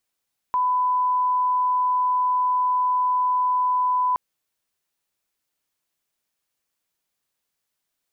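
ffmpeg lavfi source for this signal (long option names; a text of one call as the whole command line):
ffmpeg -f lavfi -i "sine=frequency=1000:duration=3.62:sample_rate=44100,volume=0.06dB" out.wav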